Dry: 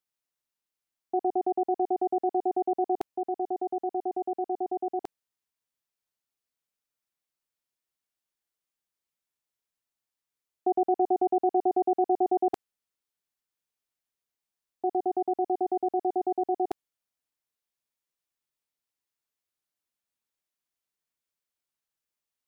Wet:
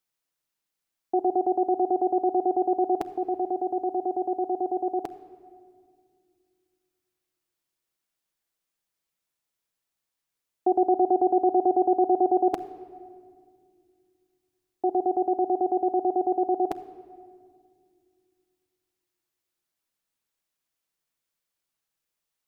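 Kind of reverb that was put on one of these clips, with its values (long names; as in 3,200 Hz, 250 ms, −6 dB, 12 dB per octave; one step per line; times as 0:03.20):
rectangular room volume 3,700 cubic metres, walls mixed, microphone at 0.66 metres
level +4 dB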